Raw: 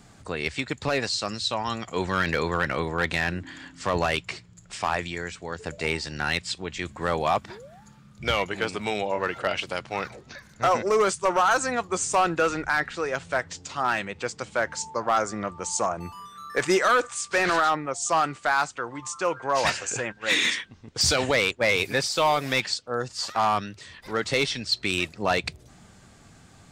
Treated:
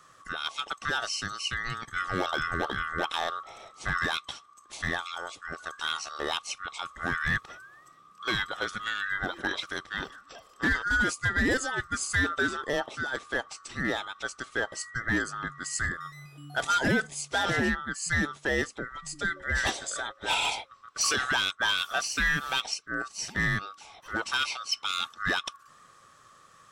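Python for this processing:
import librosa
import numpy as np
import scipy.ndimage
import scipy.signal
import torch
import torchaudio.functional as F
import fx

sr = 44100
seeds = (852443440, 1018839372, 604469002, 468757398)

y = fx.band_swap(x, sr, width_hz=1000)
y = F.gain(torch.from_numpy(y), -4.5).numpy()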